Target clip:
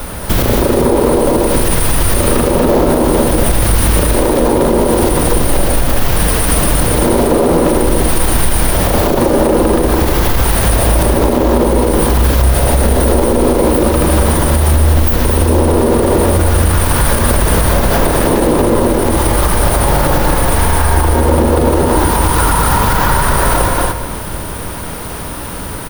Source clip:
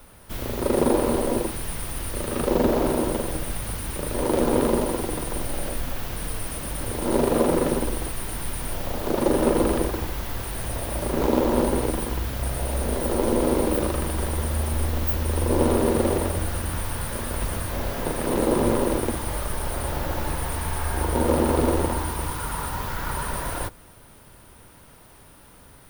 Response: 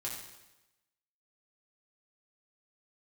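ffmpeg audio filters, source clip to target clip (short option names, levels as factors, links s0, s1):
-filter_complex "[0:a]acompressor=threshold=0.0316:ratio=6,aecho=1:1:234:0.531,asplit=2[s0][s1];[1:a]atrim=start_sample=2205,asetrate=22491,aresample=44100,lowpass=f=2800:w=0.5412,lowpass=f=2800:w=1.3066[s2];[s1][s2]afir=irnorm=-1:irlink=0,volume=0.211[s3];[s0][s3]amix=inputs=2:normalize=0,alimiter=level_in=17.8:limit=0.891:release=50:level=0:latency=1,volume=0.891"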